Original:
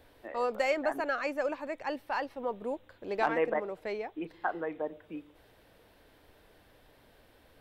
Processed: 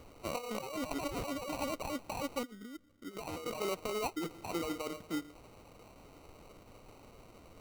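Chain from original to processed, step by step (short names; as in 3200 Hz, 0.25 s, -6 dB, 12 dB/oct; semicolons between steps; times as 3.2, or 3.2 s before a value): 1.19–1.69 high shelf 2100 Hz +7.5 dB; negative-ratio compressor -38 dBFS, ratio -1; 2.43–3.17 vocal tract filter i; sample-rate reducer 1700 Hz, jitter 0%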